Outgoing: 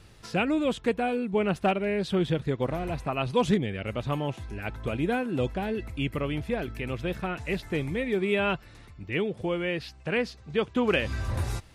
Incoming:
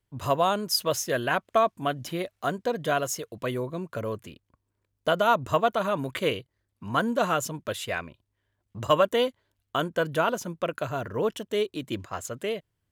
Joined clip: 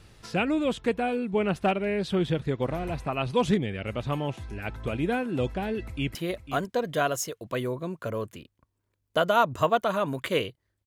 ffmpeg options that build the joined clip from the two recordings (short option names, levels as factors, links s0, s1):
-filter_complex "[0:a]apad=whole_dur=10.86,atrim=end=10.86,atrim=end=6.152[s0];[1:a]atrim=start=2.058:end=6.77[s1];[s0][s1]acrossfade=d=0.004:c1=hsin:c2=hsin,asplit=2[s2][s3];[s3]afade=t=in:st=5.79:d=0.01,afade=t=out:st=6.15:d=0.01,aecho=0:1:500|1000:0.298538|0.0447807[s4];[s2][s4]amix=inputs=2:normalize=0"